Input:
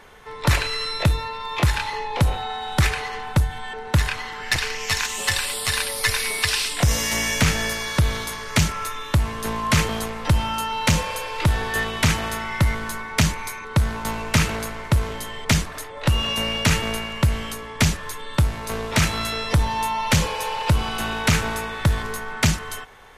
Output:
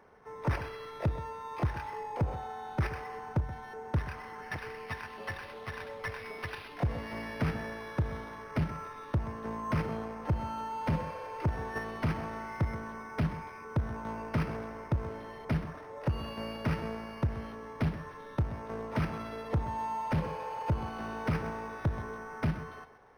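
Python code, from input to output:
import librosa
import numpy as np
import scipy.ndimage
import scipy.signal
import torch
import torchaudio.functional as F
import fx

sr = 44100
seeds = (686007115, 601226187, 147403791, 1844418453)

p1 = fx.highpass(x, sr, hz=160.0, slope=6)
p2 = fx.high_shelf(p1, sr, hz=3700.0, db=-4.0)
p3 = fx.level_steps(p2, sr, step_db=23)
p4 = p2 + (p3 * 10.0 ** (1.0 / 20.0))
p5 = 10.0 ** (-13.5 / 20.0) * np.tanh(p4 / 10.0 ** (-13.5 / 20.0))
p6 = fx.spacing_loss(p5, sr, db_at_10k=42)
p7 = p6 + 10.0 ** (-14.0 / 20.0) * np.pad(p6, (int(129 * sr / 1000.0), 0))[:len(p6)]
p8 = np.interp(np.arange(len(p7)), np.arange(len(p7))[::6], p7[::6])
y = p8 * 10.0 ** (-7.0 / 20.0)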